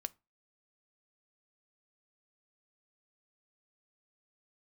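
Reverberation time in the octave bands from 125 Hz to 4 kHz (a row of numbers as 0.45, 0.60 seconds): 0.30, 0.30, 0.25, 0.25, 0.25, 0.20 seconds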